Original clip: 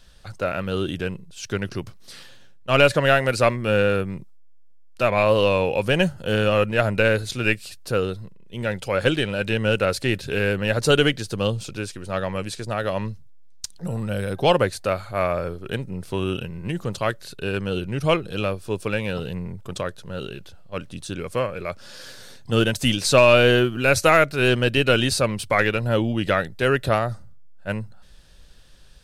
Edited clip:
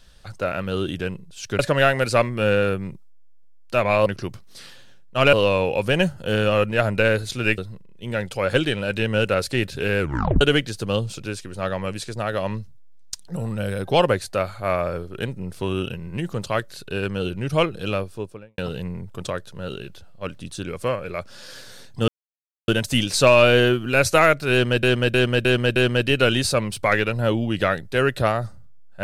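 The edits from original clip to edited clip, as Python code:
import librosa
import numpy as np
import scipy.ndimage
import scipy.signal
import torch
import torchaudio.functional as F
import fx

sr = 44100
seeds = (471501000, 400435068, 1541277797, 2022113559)

y = fx.studio_fade_out(x, sr, start_s=18.46, length_s=0.63)
y = fx.edit(y, sr, fx.move(start_s=1.59, length_s=1.27, to_s=5.33),
    fx.cut(start_s=7.58, length_s=0.51),
    fx.tape_stop(start_s=10.5, length_s=0.42),
    fx.insert_silence(at_s=22.59, length_s=0.6),
    fx.repeat(start_s=24.43, length_s=0.31, count=5), tone=tone)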